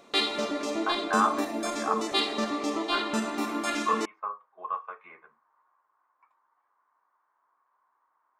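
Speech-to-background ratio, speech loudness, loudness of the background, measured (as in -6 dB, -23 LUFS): -3.0 dB, -32.5 LUFS, -29.5 LUFS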